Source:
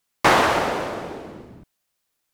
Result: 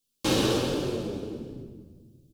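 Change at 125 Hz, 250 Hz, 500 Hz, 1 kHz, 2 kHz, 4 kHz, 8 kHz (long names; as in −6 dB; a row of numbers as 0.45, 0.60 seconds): +2.0, +1.0, −5.0, −16.5, −15.0, −2.5, −2.0 decibels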